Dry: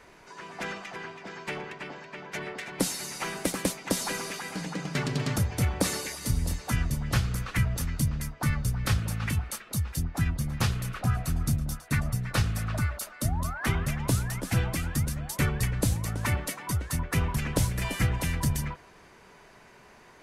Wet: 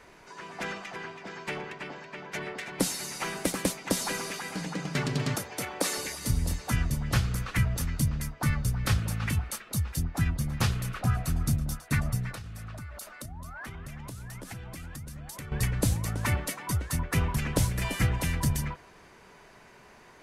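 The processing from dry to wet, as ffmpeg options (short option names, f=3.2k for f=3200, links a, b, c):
-filter_complex "[0:a]asettb=1/sr,asplit=3[a][b][c];[a]atrim=end=5.354[d];[b]atrim=start=5.35:end=5.98,asetpts=PTS-STARTPTS,afade=t=in:d=0.004:c=qsin,afade=t=out:st=0.626:d=0.004:c=qsin,highpass=340[e];[c]atrim=start=5.976[f];[d][e]acrossfade=d=0.004:c1=hsin:c2=qsin[g];[g][f]acrossfade=d=0.004:c1=qsin:c2=hsin,asettb=1/sr,asplit=3[h][i][j];[h]atrim=end=12.314[k];[i]atrim=start=12.31:end=15.52,asetpts=PTS-STARTPTS,afade=t=in:d=0.004:c=qsin,afade=t=out:st=3.206:d=0.004:c=qsin,acompressor=threshold=-37dB:ratio=12:attack=3.2:release=140:knee=1:detection=peak[l];[j]atrim=start=15.516[m];[k][l]acrossfade=d=0.004:c1=hsin:c2=qsin[n];[n][m]acrossfade=d=0.004:c1=qsin:c2=hsin"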